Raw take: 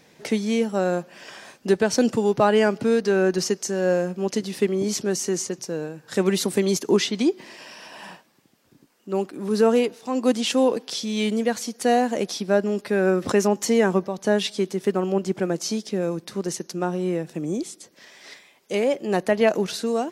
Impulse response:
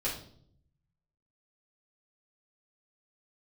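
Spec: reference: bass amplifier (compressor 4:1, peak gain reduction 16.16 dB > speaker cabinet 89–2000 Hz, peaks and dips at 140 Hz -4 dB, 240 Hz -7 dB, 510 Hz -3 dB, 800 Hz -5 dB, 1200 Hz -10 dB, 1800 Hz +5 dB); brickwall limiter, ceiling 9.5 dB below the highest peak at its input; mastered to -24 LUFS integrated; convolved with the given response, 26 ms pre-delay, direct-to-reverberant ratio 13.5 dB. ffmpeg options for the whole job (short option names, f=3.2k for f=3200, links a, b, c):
-filter_complex "[0:a]alimiter=limit=-16.5dB:level=0:latency=1,asplit=2[a][b];[1:a]atrim=start_sample=2205,adelay=26[c];[b][c]afir=irnorm=-1:irlink=0,volume=-19dB[d];[a][d]amix=inputs=2:normalize=0,acompressor=threshold=-38dB:ratio=4,highpass=f=89:w=0.5412,highpass=f=89:w=1.3066,equalizer=f=140:t=q:w=4:g=-4,equalizer=f=240:t=q:w=4:g=-7,equalizer=f=510:t=q:w=4:g=-3,equalizer=f=800:t=q:w=4:g=-5,equalizer=f=1.2k:t=q:w=4:g=-10,equalizer=f=1.8k:t=q:w=4:g=5,lowpass=f=2k:w=0.5412,lowpass=f=2k:w=1.3066,volume=19dB"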